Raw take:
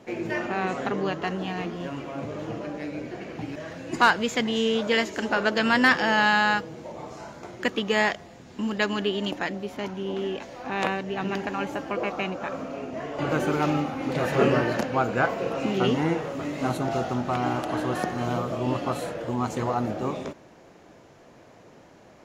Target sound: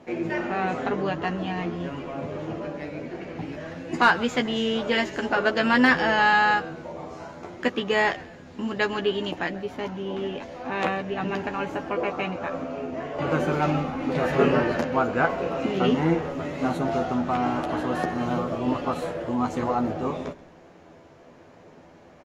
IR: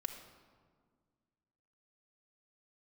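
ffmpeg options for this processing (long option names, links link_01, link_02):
-filter_complex "[0:a]aemphasis=mode=reproduction:type=cd,asplit=2[link_01][link_02];[link_02]adelay=12,volume=-5.5dB[link_03];[link_01][link_03]amix=inputs=2:normalize=0,asplit=4[link_04][link_05][link_06][link_07];[link_05]adelay=132,afreqshift=-87,volume=-20.5dB[link_08];[link_06]adelay=264,afreqshift=-174,volume=-28dB[link_09];[link_07]adelay=396,afreqshift=-261,volume=-35.6dB[link_10];[link_04][link_08][link_09][link_10]amix=inputs=4:normalize=0"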